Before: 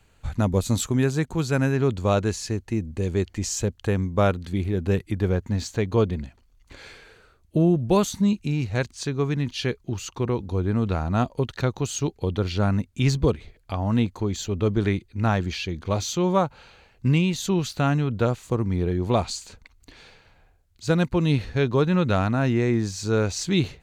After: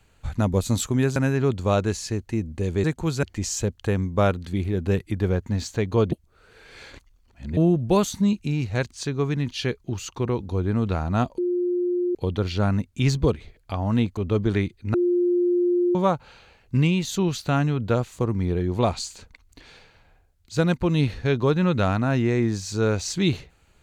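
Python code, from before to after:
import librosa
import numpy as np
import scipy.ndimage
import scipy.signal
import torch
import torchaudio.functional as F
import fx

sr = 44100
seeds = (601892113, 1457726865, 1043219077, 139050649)

y = fx.edit(x, sr, fx.move(start_s=1.16, length_s=0.39, to_s=3.23),
    fx.reverse_span(start_s=6.12, length_s=1.45),
    fx.bleep(start_s=11.38, length_s=0.77, hz=355.0, db=-20.5),
    fx.cut(start_s=14.17, length_s=0.31),
    fx.bleep(start_s=15.25, length_s=1.01, hz=353.0, db=-17.5), tone=tone)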